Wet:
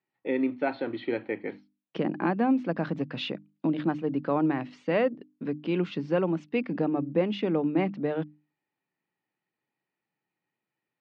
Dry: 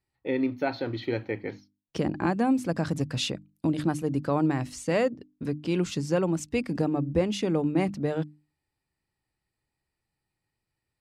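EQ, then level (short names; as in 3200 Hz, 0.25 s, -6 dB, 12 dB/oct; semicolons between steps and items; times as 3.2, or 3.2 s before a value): HPF 170 Hz 24 dB/oct; LPF 3300 Hz 24 dB/oct; 0.0 dB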